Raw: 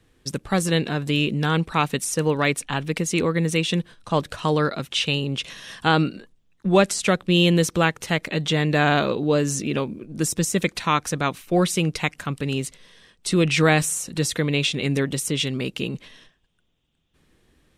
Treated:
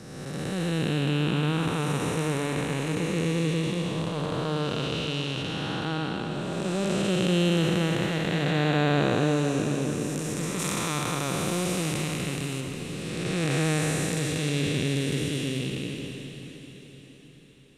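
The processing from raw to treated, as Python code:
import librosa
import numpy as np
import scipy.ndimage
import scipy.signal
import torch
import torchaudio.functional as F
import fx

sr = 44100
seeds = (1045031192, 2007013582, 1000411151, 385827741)

y = fx.spec_blur(x, sr, span_ms=705.0)
y = fx.high_shelf(y, sr, hz=4400.0, db=10.0, at=(10.59, 12.61))
y = fx.echo_diffused(y, sr, ms=631, feedback_pct=43, wet_db=-11.0)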